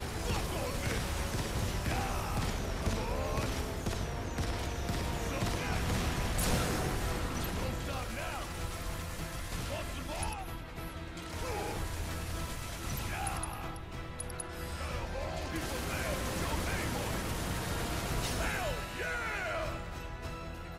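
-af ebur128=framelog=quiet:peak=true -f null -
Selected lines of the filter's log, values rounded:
Integrated loudness:
  I:         -36.1 LUFS
  Threshold: -46.1 LUFS
Loudness range:
  LRA:         5.0 LU
  Threshold: -56.1 LUFS
  LRA low:   -39.0 LUFS
  LRA high:  -34.0 LUFS
True peak:
  Peak:      -18.9 dBFS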